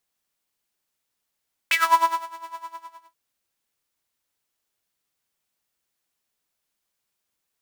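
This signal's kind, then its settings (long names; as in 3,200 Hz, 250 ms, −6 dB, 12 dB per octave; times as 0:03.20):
subtractive patch with tremolo E4, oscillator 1 saw, detune 15 cents, sub −23 dB, noise −16 dB, filter highpass, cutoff 960 Hz, Q 9.5, filter envelope 1.5 octaves, filter decay 0.17 s, filter sustain 0%, attack 1.6 ms, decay 0.55 s, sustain −23 dB, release 0.58 s, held 0.85 s, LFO 9.8 Hz, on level 15.5 dB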